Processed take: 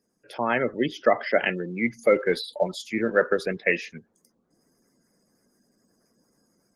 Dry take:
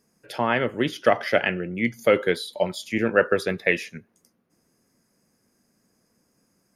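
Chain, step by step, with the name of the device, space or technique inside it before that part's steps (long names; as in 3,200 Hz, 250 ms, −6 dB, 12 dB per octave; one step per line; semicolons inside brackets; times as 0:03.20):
noise-suppressed video call (high-pass filter 150 Hz 12 dB per octave; gate on every frequency bin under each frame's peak −20 dB strong; automatic gain control gain up to 7.5 dB; level −4.5 dB; Opus 20 kbit/s 48,000 Hz)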